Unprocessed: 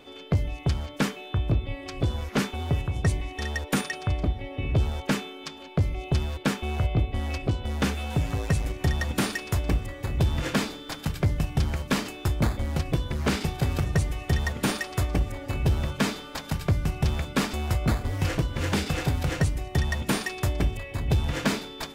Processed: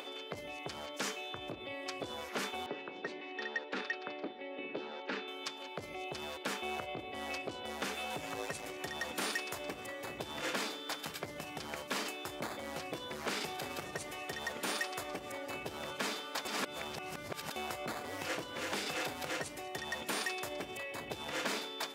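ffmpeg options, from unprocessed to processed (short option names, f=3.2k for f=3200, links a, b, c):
-filter_complex "[0:a]asettb=1/sr,asplit=3[a][b][c];[a]atrim=end=0.944[d];[b]atrim=start=0.94:end=1.49,asetpts=PTS-STARTPTS,afade=t=in:d=0.004:c=qsin,afade=t=out:st=0.546:d=0.004:c=qsin,equalizer=f=6.3k:w=1.4:g=7[e];[c]atrim=start=1.486[f];[d][e]acrossfade=d=0.004:c1=hsin:c2=qsin[g];[g][f]acrossfade=d=0.004:c1=qsin:c2=hsin,asettb=1/sr,asplit=3[h][i][j];[h]atrim=end=2.664[k];[i]atrim=start=2.66:end=5.28,asetpts=PTS-STARTPTS,afade=t=in:d=0.004:c=qsin,afade=t=out:st=2.616:d=0.004:c=qsin,highpass=f=210:w=0.5412,highpass=f=210:w=1.3066,equalizer=f=680:t=q:w=4:g=-8,equalizer=f=1.1k:t=q:w=4:g=-6,equalizer=f=2.2k:t=q:w=4:g=-4,equalizer=f=3.2k:t=q:w=4:g=-6,lowpass=f=3.9k:w=0.5412,lowpass=f=3.9k:w=1.3066[l];[j]atrim=start=5.276[m];[k][l]acrossfade=d=0.004:c1=hsin:c2=qsin[n];[n][m]acrossfade=d=0.004:c1=qsin:c2=hsin,asplit=3[o][p][q];[o]atrim=end=16.452[r];[p]atrim=start=16.448:end=17.562,asetpts=PTS-STARTPTS,areverse[s];[q]atrim=start=17.558[t];[r][s]acrossfade=d=0.004:c1=hsin:c2=hsin[u];[u][t]acrossfade=d=0.004:c1=hsin:c2=hsin,alimiter=limit=-22.5dB:level=0:latency=1:release=27,highpass=400,acompressor=mode=upward:threshold=-38dB:ratio=2.5,volume=-2dB"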